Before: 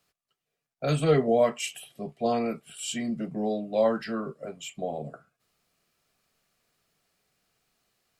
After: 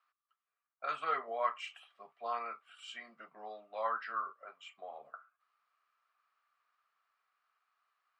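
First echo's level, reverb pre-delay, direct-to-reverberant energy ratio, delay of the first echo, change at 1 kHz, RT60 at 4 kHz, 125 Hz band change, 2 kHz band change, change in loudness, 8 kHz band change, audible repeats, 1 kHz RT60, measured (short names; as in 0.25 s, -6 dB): none, none, none, none, -3.0 dB, none, under -40 dB, -4.5 dB, -11.5 dB, under -25 dB, none, none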